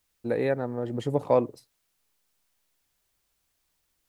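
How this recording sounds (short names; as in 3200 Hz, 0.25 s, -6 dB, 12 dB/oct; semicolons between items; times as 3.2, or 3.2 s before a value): a quantiser's noise floor 12-bit, dither triangular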